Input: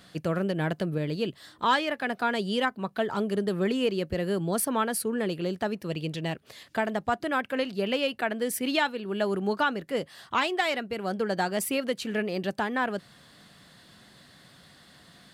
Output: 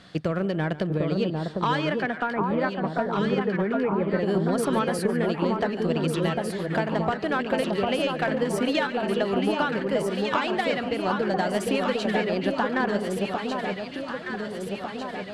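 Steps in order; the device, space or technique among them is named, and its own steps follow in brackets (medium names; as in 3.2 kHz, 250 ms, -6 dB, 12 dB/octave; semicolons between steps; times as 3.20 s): 2.01–4.24 s: Chebyshev band-pass 140–2300 Hz, order 5; distance through air 76 m; drum-bus smash (transient shaper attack +5 dB, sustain +1 dB; compression, threshold -25 dBFS, peak gain reduction 8.5 dB; saturation -18.5 dBFS, distortion -22 dB); echo whose repeats swap between lows and highs 750 ms, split 1.2 kHz, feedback 77%, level -2.5 dB; modulated delay 143 ms, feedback 36%, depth 85 cents, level -17 dB; trim +4 dB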